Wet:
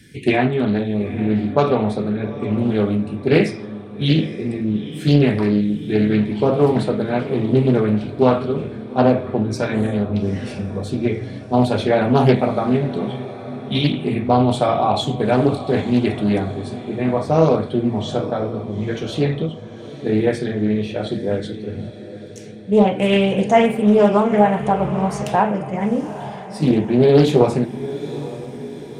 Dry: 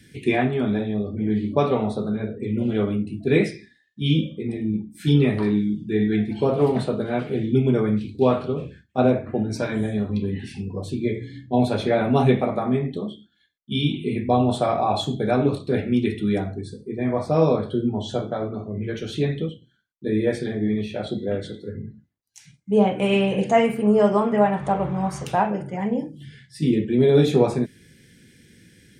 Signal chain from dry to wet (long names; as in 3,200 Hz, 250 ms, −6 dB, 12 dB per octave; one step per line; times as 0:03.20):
feedback delay with all-pass diffusion 864 ms, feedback 50%, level −14 dB
highs frequency-modulated by the lows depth 0.39 ms
level +4 dB